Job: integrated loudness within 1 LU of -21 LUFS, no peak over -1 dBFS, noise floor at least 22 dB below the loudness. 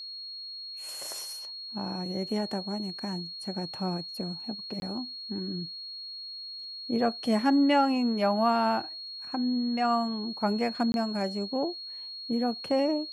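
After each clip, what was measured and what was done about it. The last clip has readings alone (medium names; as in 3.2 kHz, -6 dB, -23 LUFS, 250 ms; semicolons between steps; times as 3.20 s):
dropouts 2; longest dropout 21 ms; steady tone 4.3 kHz; tone level -38 dBFS; loudness -30.0 LUFS; peak level -13.0 dBFS; loudness target -21.0 LUFS
-> interpolate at 4.80/10.92 s, 21 ms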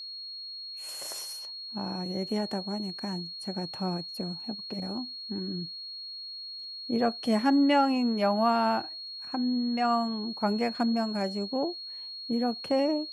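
dropouts 0; steady tone 4.3 kHz; tone level -38 dBFS
-> band-stop 4.3 kHz, Q 30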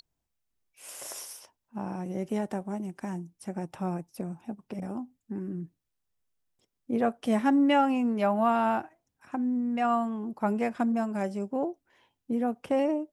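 steady tone not found; loudness -30.0 LUFS; peak level -13.5 dBFS; loudness target -21.0 LUFS
-> trim +9 dB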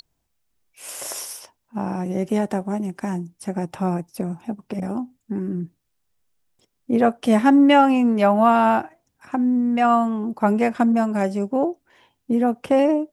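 loudness -21.0 LUFS; peak level -4.5 dBFS; noise floor -73 dBFS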